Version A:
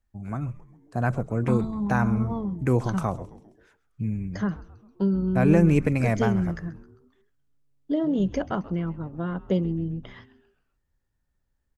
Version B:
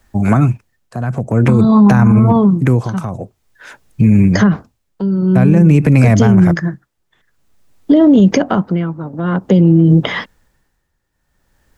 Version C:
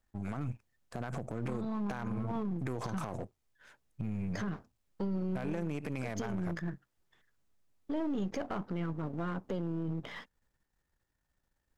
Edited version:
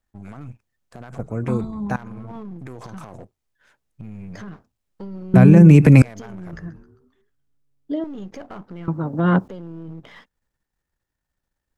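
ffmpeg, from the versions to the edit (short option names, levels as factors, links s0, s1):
-filter_complex "[0:a]asplit=2[s0][s1];[1:a]asplit=2[s2][s3];[2:a]asplit=5[s4][s5][s6][s7][s8];[s4]atrim=end=1.192[s9];[s0]atrim=start=1.188:end=1.962[s10];[s5]atrim=start=1.958:end=5.342[s11];[s2]atrim=start=5.338:end=6.022[s12];[s6]atrim=start=6.018:end=6.532[s13];[s1]atrim=start=6.528:end=8.042[s14];[s7]atrim=start=8.038:end=8.882[s15];[s3]atrim=start=8.878:end=9.482[s16];[s8]atrim=start=9.478[s17];[s9][s10]acrossfade=d=0.004:c1=hsin:c2=hsin[s18];[s18][s11]acrossfade=d=0.004:c1=hsin:c2=hsin[s19];[s19][s12]acrossfade=d=0.004:c1=hsin:c2=hsin[s20];[s20][s13]acrossfade=d=0.004:c1=hsin:c2=hsin[s21];[s21][s14]acrossfade=d=0.004:c1=hsin:c2=hsin[s22];[s22][s15]acrossfade=d=0.004:c1=hsin:c2=hsin[s23];[s23][s16]acrossfade=d=0.004:c1=hsin:c2=hsin[s24];[s24][s17]acrossfade=d=0.004:c1=hsin:c2=hsin"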